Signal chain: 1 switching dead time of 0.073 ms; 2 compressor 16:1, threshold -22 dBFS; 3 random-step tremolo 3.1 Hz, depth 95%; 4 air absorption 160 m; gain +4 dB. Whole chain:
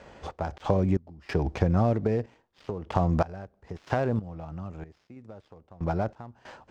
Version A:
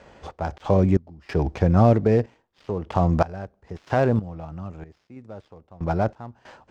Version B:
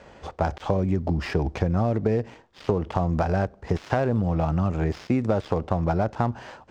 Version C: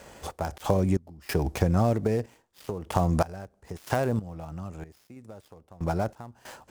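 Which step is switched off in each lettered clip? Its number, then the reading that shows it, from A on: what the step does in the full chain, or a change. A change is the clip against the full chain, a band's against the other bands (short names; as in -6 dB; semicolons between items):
2, mean gain reduction 3.5 dB; 3, momentary loudness spread change -15 LU; 4, 4 kHz band +4.5 dB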